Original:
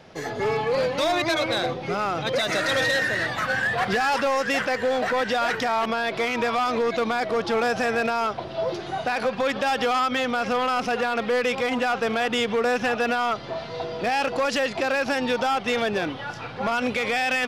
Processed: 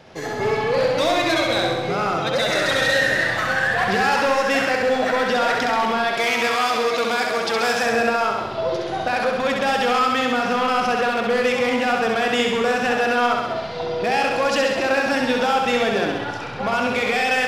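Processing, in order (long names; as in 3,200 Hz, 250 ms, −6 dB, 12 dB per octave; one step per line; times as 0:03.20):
0:06.12–0:07.83: spectral tilt +2.5 dB per octave
on a send: flutter between parallel walls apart 11.3 metres, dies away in 1.1 s
on the sum: level +1.5 dB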